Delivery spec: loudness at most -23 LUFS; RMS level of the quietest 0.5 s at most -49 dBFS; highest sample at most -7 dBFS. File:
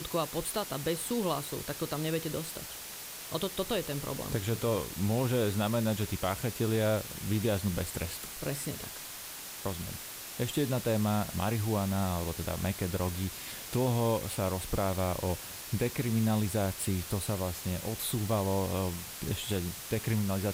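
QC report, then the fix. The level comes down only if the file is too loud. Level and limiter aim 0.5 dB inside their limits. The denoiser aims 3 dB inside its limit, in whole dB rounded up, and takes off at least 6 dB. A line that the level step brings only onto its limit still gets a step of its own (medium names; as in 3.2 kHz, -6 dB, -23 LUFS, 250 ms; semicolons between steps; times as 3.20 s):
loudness -32.5 LUFS: pass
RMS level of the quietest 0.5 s -43 dBFS: fail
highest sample -17.0 dBFS: pass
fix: noise reduction 9 dB, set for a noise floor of -43 dBFS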